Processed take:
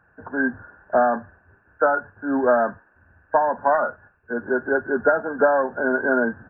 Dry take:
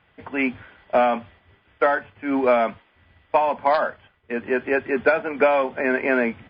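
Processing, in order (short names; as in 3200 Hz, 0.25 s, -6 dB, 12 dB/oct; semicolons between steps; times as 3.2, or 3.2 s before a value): nonlinear frequency compression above 1400 Hz 4:1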